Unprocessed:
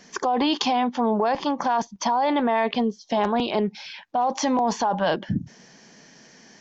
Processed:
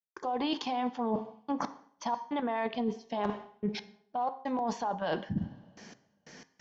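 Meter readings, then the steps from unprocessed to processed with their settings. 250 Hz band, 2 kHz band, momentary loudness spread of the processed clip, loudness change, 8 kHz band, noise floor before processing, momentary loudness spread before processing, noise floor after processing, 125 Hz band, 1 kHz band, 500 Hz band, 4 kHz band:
−9.5 dB, −11.0 dB, 10 LU, −10.5 dB, can't be measured, −52 dBFS, 7 LU, −74 dBFS, −7.0 dB, −11.0 dB, −11.0 dB, −12.0 dB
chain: gate pattern ".xxxxxx..x..x" 91 BPM −60 dB
high-shelf EQ 5,600 Hz −7 dB
in parallel at 0 dB: output level in coarse steps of 23 dB
on the sum: coupled-rooms reverb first 0.7 s, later 1.9 s, from −18 dB, DRR 16 dB
reversed playback
downward compressor 6 to 1, threshold −30 dBFS, peak gain reduction 16 dB
reversed playback
hum removal 133.2 Hz, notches 16

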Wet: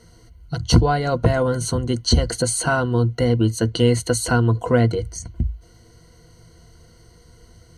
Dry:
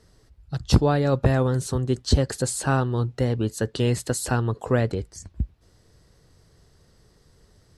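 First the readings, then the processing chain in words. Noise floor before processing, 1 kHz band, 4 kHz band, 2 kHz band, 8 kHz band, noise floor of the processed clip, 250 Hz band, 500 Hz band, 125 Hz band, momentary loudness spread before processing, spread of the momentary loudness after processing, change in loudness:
−59 dBFS, +4.5 dB, +7.0 dB, +6.0 dB, +5.5 dB, −51 dBFS, +4.0 dB, +4.0 dB, +3.5 dB, 12 LU, 10 LU, +4.0 dB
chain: EQ curve with evenly spaced ripples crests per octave 1.9, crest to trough 15 dB
in parallel at −1.5 dB: downward compressor, threshold −28 dBFS, peak gain reduction 18 dB

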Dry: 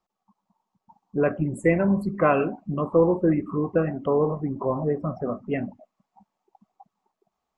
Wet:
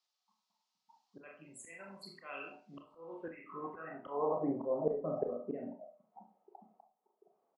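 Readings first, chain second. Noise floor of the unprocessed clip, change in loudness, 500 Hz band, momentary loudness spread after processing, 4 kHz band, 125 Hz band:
−83 dBFS, −15.0 dB, −14.5 dB, 20 LU, can't be measured, −24.0 dB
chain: high-pass filter 120 Hz 24 dB per octave
double-tracking delay 42 ms −8 dB
band-pass filter sweep 4,500 Hz → 490 Hz, 0:02.92–0:04.66
volume swells 636 ms
four-comb reverb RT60 0.32 s, combs from 25 ms, DRR 4 dB
level +9 dB

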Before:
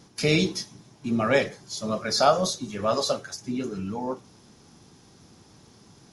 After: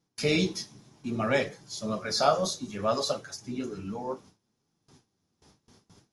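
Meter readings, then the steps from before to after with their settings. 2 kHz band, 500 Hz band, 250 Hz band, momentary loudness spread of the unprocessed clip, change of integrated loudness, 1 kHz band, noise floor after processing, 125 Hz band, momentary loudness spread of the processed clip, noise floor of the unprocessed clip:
−4.0 dB, −4.0 dB, −4.0 dB, 13 LU, −4.0 dB, −3.5 dB, −79 dBFS, −4.5 dB, 13 LU, −55 dBFS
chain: noise gate with hold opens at −42 dBFS
flanger 0.63 Hz, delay 5.8 ms, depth 9.1 ms, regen −35%

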